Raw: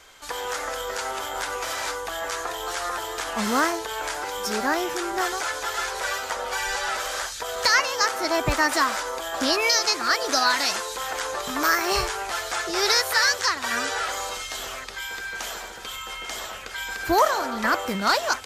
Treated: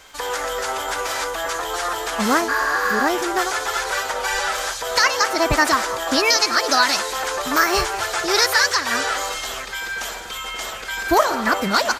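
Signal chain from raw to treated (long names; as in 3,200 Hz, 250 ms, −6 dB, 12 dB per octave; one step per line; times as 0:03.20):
surface crackle 27 per second −42 dBFS
on a send: echo with shifted repeats 318 ms, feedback 55%, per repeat +32 Hz, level −19 dB
on the sum: healed spectral selection 0:03.85–0:04.64, 970–12,000 Hz after
far-end echo of a speakerphone 270 ms, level −18 dB
phase-vocoder stretch with locked phases 0.65×
level +5.5 dB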